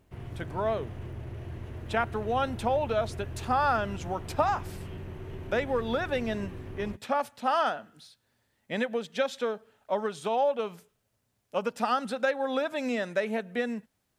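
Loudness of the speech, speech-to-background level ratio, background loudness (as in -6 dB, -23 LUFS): -30.5 LUFS, 10.5 dB, -41.0 LUFS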